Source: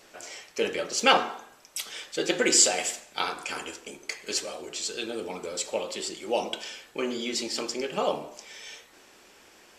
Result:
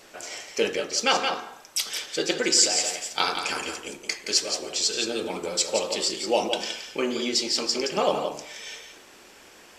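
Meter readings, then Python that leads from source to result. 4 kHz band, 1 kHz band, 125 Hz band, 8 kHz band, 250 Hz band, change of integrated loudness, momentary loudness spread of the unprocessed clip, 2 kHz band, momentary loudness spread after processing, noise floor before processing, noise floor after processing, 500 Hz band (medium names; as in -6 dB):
+5.0 dB, +1.0 dB, +2.5 dB, +2.0 dB, +2.0 dB, +3.0 dB, 19 LU, +1.0 dB, 12 LU, -56 dBFS, -51 dBFS, +2.5 dB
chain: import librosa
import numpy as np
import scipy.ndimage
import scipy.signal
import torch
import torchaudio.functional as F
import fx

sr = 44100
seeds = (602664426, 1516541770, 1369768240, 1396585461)

y = fx.dynamic_eq(x, sr, hz=5100.0, q=2.0, threshold_db=-45.0, ratio=4.0, max_db=8)
y = y + 10.0 ** (-7.5 / 20.0) * np.pad(y, (int(171 * sr / 1000.0), 0))[:len(y)]
y = fx.rider(y, sr, range_db=4, speed_s=0.5)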